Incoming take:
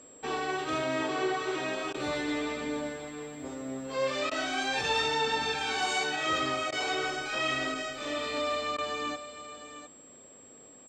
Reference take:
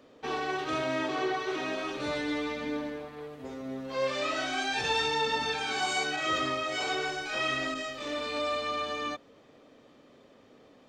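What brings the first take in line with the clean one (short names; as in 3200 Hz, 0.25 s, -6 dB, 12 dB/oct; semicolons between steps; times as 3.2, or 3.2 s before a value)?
notch 7600 Hz, Q 30; interpolate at 1.93/4.3/6.71/8.77, 12 ms; inverse comb 0.708 s -12.5 dB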